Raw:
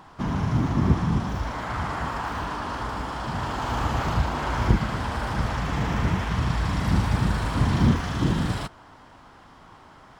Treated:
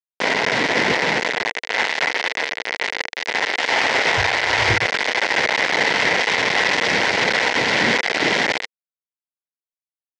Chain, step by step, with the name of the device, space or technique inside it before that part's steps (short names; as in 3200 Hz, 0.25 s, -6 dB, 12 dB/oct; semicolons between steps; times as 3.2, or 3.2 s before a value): hand-held game console (bit-crush 4-bit; speaker cabinet 460–5500 Hz, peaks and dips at 470 Hz +5 dB, 1200 Hz -10 dB, 2000 Hz +10 dB); 4.16–4.86 resonant low shelf 140 Hz +11 dB, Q 3; gain +8 dB